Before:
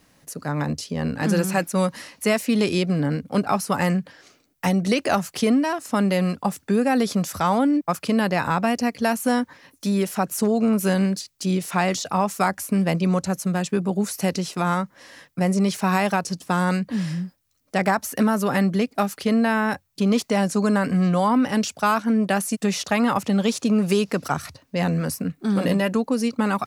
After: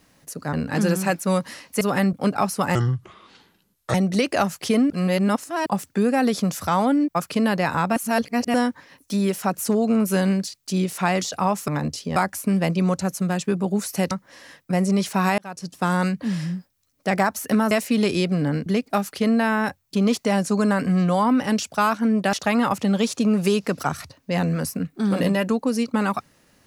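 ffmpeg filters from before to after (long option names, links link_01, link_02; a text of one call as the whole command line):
ffmpeg -i in.wav -filter_complex "[0:a]asplit=17[link_01][link_02][link_03][link_04][link_05][link_06][link_07][link_08][link_09][link_10][link_11][link_12][link_13][link_14][link_15][link_16][link_17];[link_01]atrim=end=0.532[link_18];[link_02]atrim=start=1.008:end=2.292[link_19];[link_03]atrim=start=18.388:end=18.712[link_20];[link_04]atrim=start=3.238:end=3.864[link_21];[link_05]atrim=start=3.86:end=4.67,asetpts=PTS-STARTPTS,asetrate=29988,aresample=44100[link_22];[link_06]atrim=start=4.666:end=5.632[link_23];[link_07]atrim=start=5.628:end=6.392,asetpts=PTS-STARTPTS,areverse[link_24];[link_08]atrim=start=6.388:end=8.692[link_25];[link_09]atrim=start=8.688:end=9.272,asetpts=PTS-STARTPTS,areverse[link_26];[link_10]atrim=start=9.268:end=12.412[link_27];[link_11]atrim=start=0.528:end=1.012[link_28];[link_12]atrim=start=12.408:end=14.362[link_29];[link_13]atrim=start=14.788:end=16.06,asetpts=PTS-STARTPTS,afade=type=out:start_time=1.268:duration=0.004:curve=hsin[link_30];[link_14]atrim=start=16.06:end=18.392,asetpts=PTS-STARTPTS,afade=type=in:duration=0.46[link_31];[link_15]atrim=start=2.288:end=3.242[link_32];[link_16]atrim=start=18.708:end=22.382[link_33];[link_17]atrim=start=22.778[link_34];[link_18][link_19]acrossfade=duration=0.004:curve1=hsin:curve2=hsin[link_35];[link_35][link_20]acrossfade=duration=0.004:curve1=hsin:curve2=hsin[link_36];[link_36][link_21]acrossfade=duration=0.004:curve1=hsin:curve2=hsin[link_37];[link_37][link_22]acrossfade=duration=0.004:curve1=hsin:curve2=hsin[link_38];[link_38][link_23]acrossfade=duration=0.004:curve1=hsin:curve2=hsin[link_39];[link_39][link_24]acrossfade=duration=0.004:curve1=hsin:curve2=hsin[link_40];[link_40][link_25]acrossfade=duration=0.004:curve1=hsin:curve2=hsin[link_41];[link_41][link_26]acrossfade=duration=0.004:curve1=hsin:curve2=hsin[link_42];[link_42][link_27]acrossfade=duration=0.004:curve1=hsin:curve2=hsin[link_43];[link_43][link_28]acrossfade=duration=0.004:curve1=hsin:curve2=hsin[link_44];[link_44][link_29]acrossfade=duration=0.004:curve1=hsin:curve2=hsin[link_45];[link_30][link_31]concat=n=2:v=0:a=1[link_46];[link_45][link_46]acrossfade=duration=0.004:curve1=hsin:curve2=hsin[link_47];[link_47][link_32]acrossfade=duration=0.004:curve1=hsin:curve2=hsin[link_48];[link_48][link_33]acrossfade=duration=0.004:curve1=hsin:curve2=hsin[link_49];[link_49][link_34]acrossfade=duration=0.004:curve1=hsin:curve2=hsin" out.wav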